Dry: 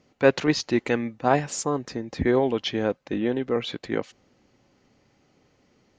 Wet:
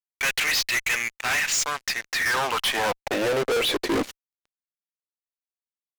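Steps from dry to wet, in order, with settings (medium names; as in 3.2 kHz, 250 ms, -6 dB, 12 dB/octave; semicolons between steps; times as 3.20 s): Chebyshev shaper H 3 -30 dB, 7 -44 dB, 8 -26 dB, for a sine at -4 dBFS; high-pass sweep 2.1 kHz -> 140 Hz, 1.99–4.73 s; fuzz box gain 41 dB, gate -49 dBFS; trim -8 dB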